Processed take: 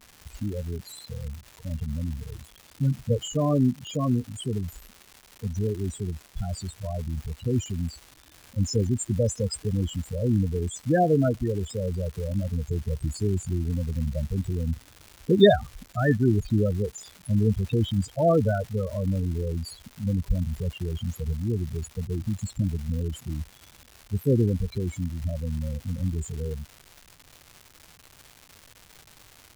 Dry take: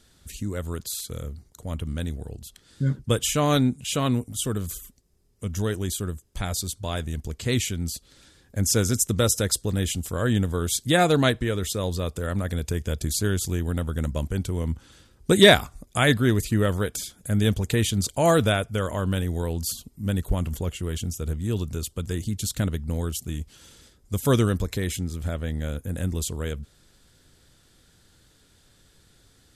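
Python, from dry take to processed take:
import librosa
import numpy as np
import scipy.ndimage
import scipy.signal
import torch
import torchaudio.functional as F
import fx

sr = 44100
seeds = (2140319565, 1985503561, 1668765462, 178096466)

y = fx.spec_topn(x, sr, count=8)
y = fx.dmg_crackle(y, sr, seeds[0], per_s=390.0, level_db=-36.0)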